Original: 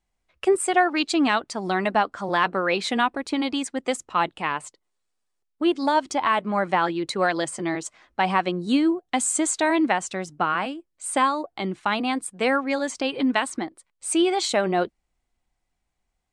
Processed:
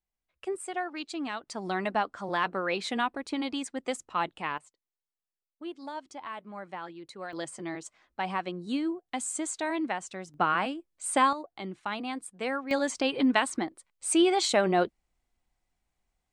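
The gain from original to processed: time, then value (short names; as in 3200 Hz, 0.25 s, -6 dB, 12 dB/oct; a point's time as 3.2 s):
-14 dB
from 1.47 s -7 dB
from 4.58 s -18 dB
from 7.33 s -10 dB
from 10.34 s -2.5 dB
from 11.33 s -10 dB
from 12.71 s -2 dB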